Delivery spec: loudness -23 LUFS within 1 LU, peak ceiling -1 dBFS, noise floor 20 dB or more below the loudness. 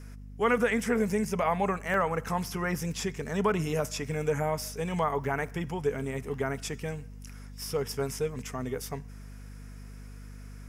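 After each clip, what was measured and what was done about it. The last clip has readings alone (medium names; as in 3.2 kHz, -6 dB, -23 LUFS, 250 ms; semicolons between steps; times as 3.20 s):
dropouts 5; longest dropout 1.5 ms; hum 50 Hz; highest harmonic 250 Hz; hum level -42 dBFS; loudness -30.5 LUFS; peak level -14.5 dBFS; loudness target -23.0 LUFS
-> interpolate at 1.94/2.48/5.24/6.34/8.39 s, 1.5 ms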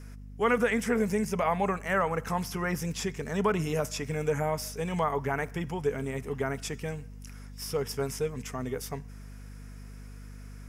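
dropouts 0; hum 50 Hz; highest harmonic 250 Hz; hum level -42 dBFS
-> de-hum 50 Hz, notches 5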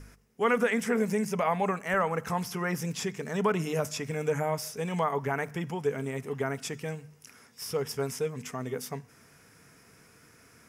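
hum not found; loudness -31.0 LUFS; peak level -13.5 dBFS; loudness target -23.0 LUFS
-> trim +8 dB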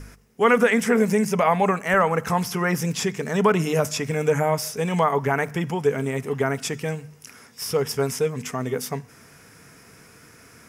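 loudness -23.0 LUFS; peak level -5.5 dBFS; noise floor -51 dBFS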